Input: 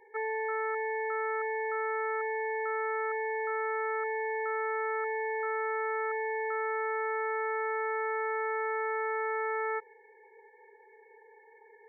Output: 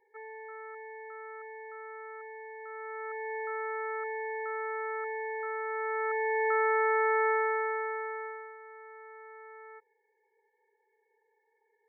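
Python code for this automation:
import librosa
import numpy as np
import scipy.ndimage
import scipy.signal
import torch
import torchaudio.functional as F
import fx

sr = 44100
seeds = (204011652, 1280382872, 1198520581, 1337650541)

y = fx.gain(x, sr, db=fx.line((2.57, -12.0), (3.35, -3.0), (5.65, -3.0), (6.51, 5.5), (7.29, 5.5), (8.26, -7.0), (8.58, -17.0)))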